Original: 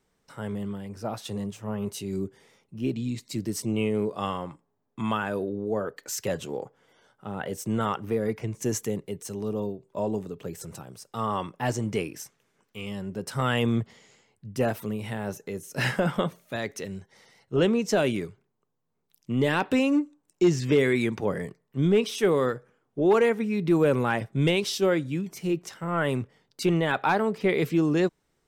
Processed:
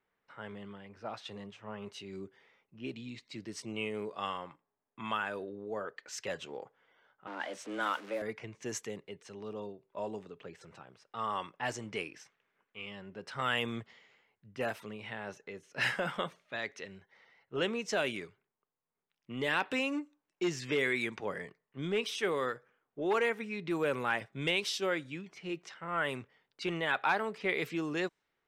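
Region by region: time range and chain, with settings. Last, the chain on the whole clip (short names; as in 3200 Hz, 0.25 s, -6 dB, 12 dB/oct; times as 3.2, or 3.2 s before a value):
7.27–8.22 zero-crossing step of -39 dBFS + bell 140 Hz -2.5 dB 2.1 oct + frequency shift +100 Hz
whole clip: low shelf 290 Hz -10.5 dB; low-pass opened by the level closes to 2300 Hz, open at -24 dBFS; bell 2200 Hz +6.5 dB 2.2 oct; gain -8 dB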